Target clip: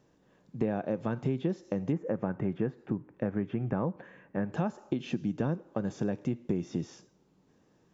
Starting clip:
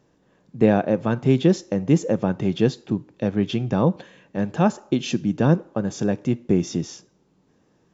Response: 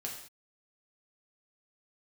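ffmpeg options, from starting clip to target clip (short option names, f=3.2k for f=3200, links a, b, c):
-filter_complex "[0:a]acrossover=split=2500[a][b];[b]acompressor=threshold=-48dB:ratio=4:attack=1:release=60[c];[a][c]amix=inputs=2:normalize=0,asettb=1/sr,asplit=3[d][e][f];[d]atrim=end=1.924[g];[e]atrim=start=1.92:end=4.53,asetpts=PTS-STARTPTS,afade=t=in:d=0.004:c=qsin,afade=t=out:st=2.606:d=0.004:c=qsin,highshelf=f=2.7k:t=q:w=1.5:g=-13.5[h];[f]atrim=start=4.526[i];[g][h]acrossfade=d=0.004:c1=hsin:c2=qsin[j];[j][i]acrossfade=d=0.004:c1=qsin:c2=hsin,acompressor=threshold=-23dB:ratio=5,volume=-4dB"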